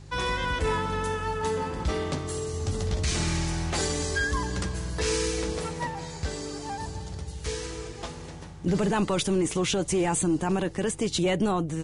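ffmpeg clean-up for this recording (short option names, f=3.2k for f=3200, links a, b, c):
-af "bandreject=f=49.4:t=h:w=4,bandreject=f=98.8:t=h:w=4,bandreject=f=148.2:t=h:w=4"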